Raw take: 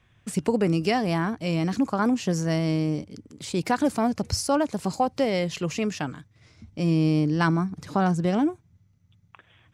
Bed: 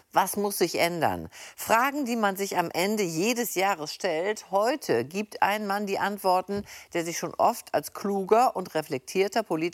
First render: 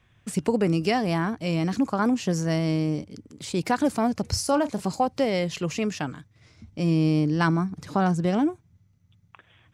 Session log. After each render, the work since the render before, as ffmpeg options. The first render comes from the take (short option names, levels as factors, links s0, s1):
-filter_complex "[0:a]asettb=1/sr,asplit=3[s0][s1][s2];[s0]atrim=end=4.274[s3];[s1]atrim=start=4.27:end=4.82,asetpts=PTS-STARTPTS,afade=t=in:d=0.004:c=qsin,afade=t=out:st=0.546:d=0.004:c=qsin,asplit=2[s4][s5];[s5]adelay=34,volume=0.224[s6];[s4][s6]amix=inputs=2:normalize=0,atrim=end_sample=24255[s7];[s2]atrim=start=4.816[s8];[s3][s7]acrossfade=d=0.004:c1=hsin:c2=qsin[s9];[s9][s8]acrossfade=d=0.004:c1=qsin:c2=hsin"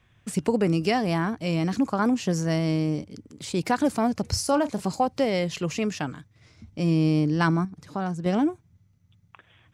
-filter_complex "[0:a]asplit=3[s0][s1][s2];[s0]atrim=end=7.652[s3];[s1]atrim=start=7.648:end=8.262,asetpts=PTS-STARTPTS,volume=0.473[s4];[s2]atrim=start=8.258[s5];[s3][s4]acrossfade=d=0.004:c1=hsin:c2=hsin[s6];[s6][s5]acrossfade=d=0.004:c1=hsin:c2=hsin"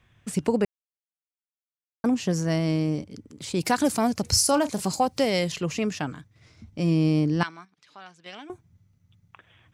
-filter_complex "[0:a]asettb=1/sr,asplit=3[s0][s1][s2];[s0]atrim=end=3.604[s3];[s1]atrim=start=3.6:end=5.52,asetpts=PTS-STARTPTS,afade=t=in:d=0.004:c=qsin,afade=t=out:st=1.916:d=0.004:c=qsin,highshelf=f=3800:g=11[s4];[s2]atrim=start=5.516[s5];[s3][s4]acrossfade=d=0.004:c1=hsin:c2=qsin[s6];[s6][s5]acrossfade=d=0.004:c1=qsin:c2=hsin,asettb=1/sr,asplit=3[s7][s8][s9];[s7]atrim=end=7.434[s10];[s8]atrim=start=7.43:end=8.5,asetpts=PTS-STARTPTS,afade=t=in:d=0.004:c=qsin,afade=t=out:st=1.066:d=0.004:c=qsin,bandpass=f=3000:t=q:w=1.5[s11];[s9]atrim=start=8.496[s12];[s10][s11]acrossfade=d=0.004:c1=hsin:c2=qsin[s13];[s13][s12]acrossfade=d=0.004:c1=qsin:c2=hsin,asplit=3[s14][s15][s16];[s14]atrim=end=0.65,asetpts=PTS-STARTPTS,afade=t=out:st=0.646:d=0.004:c=hsin[s17];[s15]atrim=start=0.65:end=2.04,asetpts=PTS-STARTPTS,volume=0[s18];[s16]atrim=start=2.04,asetpts=PTS-STARTPTS,afade=t=in:d=0.004:c=hsin[s19];[s17][s18][s19]concat=n=3:v=0:a=1"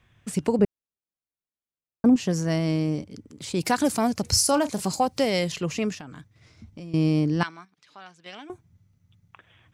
-filter_complex "[0:a]asettb=1/sr,asplit=3[s0][s1][s2];[s0]atrim=end=0.594[s3];[s1]atrim=start=0.59:end=2.16,asetpts=PTS-STARTPTS,afade=t=in:d=0.004:c=qsin,afade=t=out:st=1.566:d=0.004:c=qsin,tiltshelf=f=720:g=7.5[s4];[s2]atrim=start=2.156[s5];[s3][s4]acrossfade=d=0.004:c1=hsin:c2=qsin[s6];[s6][s5]acrossfade=d=0.004:c1=qsin:c2=hsin,asettb=1/sr,asplit=3[s7][s8][s9];[s7]atrim=end=5.944[s10];[s8]atrim=start=5.94:end=6.94,asetpts=PTS-STARTPTS,afade=t=in:d=0.004:c=qsin,afade=t=out:st=0.996:d=0.004:c=qsin,acompressor=threshold=0.0158:ratio=10:attack=3.2:release=140:knee=1:detection=peak[s11];[s9]atrim=start=6.936[s12];[s10][s11]acrossfade=d=0.004:c1=hsin:c2=qsin[s13];[s13][s12]acrossfade=d=0.004:c1=qsin:c2=hsin"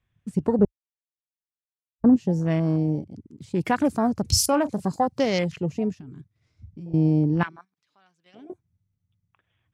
-af "afwtdn=0.02,lowshelf=f=130:g=6.5"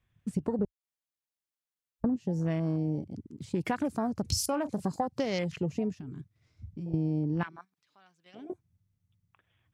-af "acompressor=threshold=0.0447:ratio=6"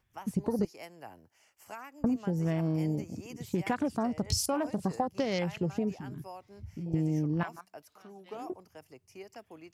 -filter_complex "[1:a]volume=0.075[s0];[0:a][s0]amix=inputs=2:normalize=0"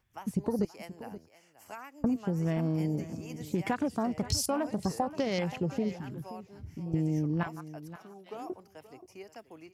-af "aecho=1:1:527:0.178"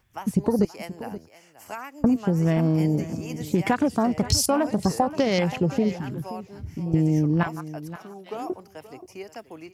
-af "volume=2.66"